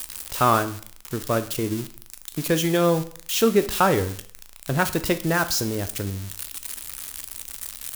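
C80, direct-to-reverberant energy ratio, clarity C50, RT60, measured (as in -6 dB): 18.5 dB, 10.0 dB, 15.0 dB, 0.55 s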